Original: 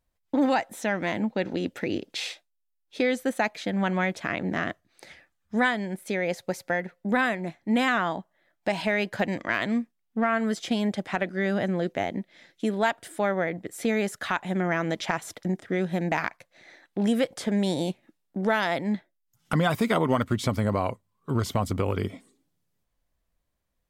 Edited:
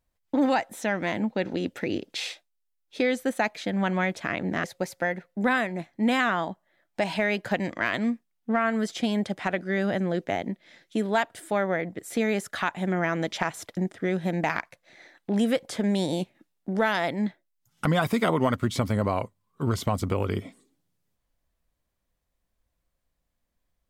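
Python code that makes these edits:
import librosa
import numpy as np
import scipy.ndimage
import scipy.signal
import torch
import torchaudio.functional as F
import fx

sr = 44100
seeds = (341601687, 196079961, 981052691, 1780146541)

y = fx.edit(x, sr, fx.cut(start_s=4.64, length_s=1.68), tone=tone)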